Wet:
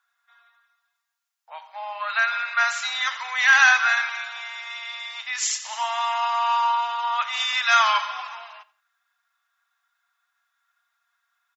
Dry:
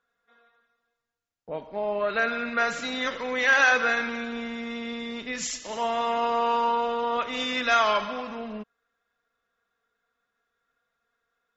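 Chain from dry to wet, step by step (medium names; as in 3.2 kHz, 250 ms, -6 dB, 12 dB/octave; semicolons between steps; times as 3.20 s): steep high-pass 800 Hz 48 dB/octave; treble shelf 6 kHz +5.5 dB; feedback delay 87 ms, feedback 27%, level -20 dB; trim +4.5 dB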